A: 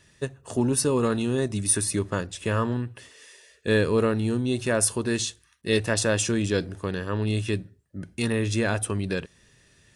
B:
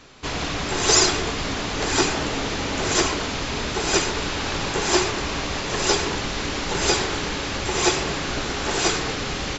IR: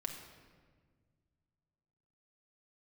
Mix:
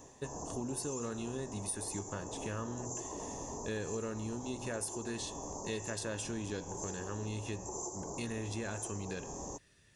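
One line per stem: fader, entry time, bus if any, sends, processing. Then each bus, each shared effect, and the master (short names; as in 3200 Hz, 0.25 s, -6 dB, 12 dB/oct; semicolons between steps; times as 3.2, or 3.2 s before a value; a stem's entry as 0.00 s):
-7.5 dB, 0.00 s, no send, de-hum 124.1 Hz, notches 28
-0.5 dB, 0.00 s, no send, Chebyshev band-stop 1000–6200 Hz, order 4; tilt +1.5 dB/oct; compressor, threshold -25 dBFS, peak gain reduction 12.5 dB; auto duck -9 dB, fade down 0.25 s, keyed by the first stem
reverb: off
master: compressor 3:1, threshold -38 dBFS, peak gain reduction 10.5 dB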